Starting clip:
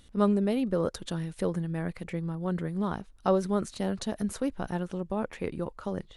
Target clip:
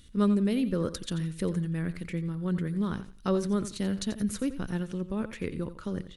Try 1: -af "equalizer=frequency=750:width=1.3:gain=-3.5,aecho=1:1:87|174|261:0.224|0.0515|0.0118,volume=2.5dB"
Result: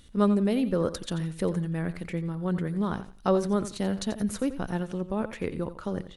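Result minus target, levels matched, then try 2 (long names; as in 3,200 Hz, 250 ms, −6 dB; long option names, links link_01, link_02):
1,000 Hz band +4.5 dB
-af "equalizer=frequency=750:width=1.3:gain=-14.5,aecho=1:1:87|174|261:0.224|0.0515|0.0118,volume=2.5dB"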